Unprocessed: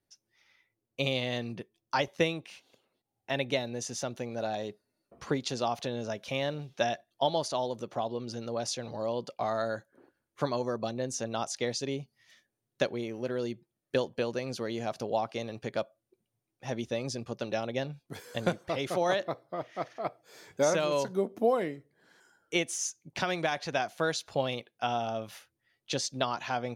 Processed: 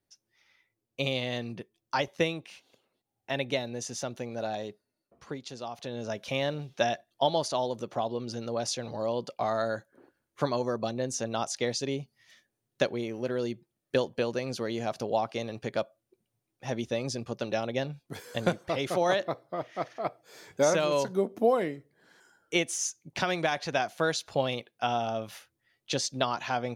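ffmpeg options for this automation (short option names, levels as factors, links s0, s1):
-af "volume=3.16,afade=t=out:st=4.55:d=0.68:silence=0.398107,afade=t=in:st=5.73:d=0.45:silence=0.316228"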